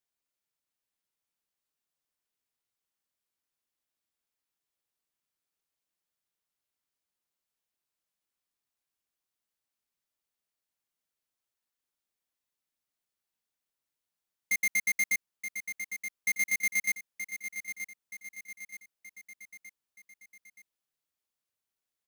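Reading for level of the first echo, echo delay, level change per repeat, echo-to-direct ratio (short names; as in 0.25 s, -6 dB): -9.5 dB, 0.925 s, -6.0 dB, -8.5 dB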